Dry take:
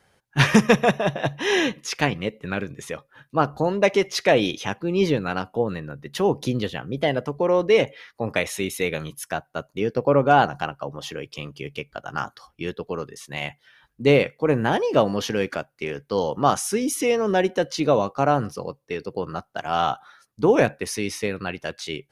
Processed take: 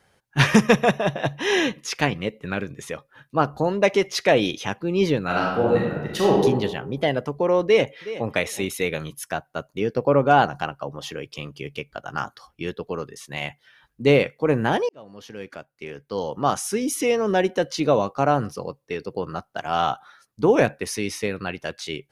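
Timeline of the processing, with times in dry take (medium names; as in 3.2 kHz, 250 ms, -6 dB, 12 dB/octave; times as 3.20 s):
5.25–6.40 s: reverb throw, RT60 1.2 s, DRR -3.5 dB
7.64–8.35 s: echo throw 370 ms, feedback 15%, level -14.5 dB
14.89–17.00 s: fade in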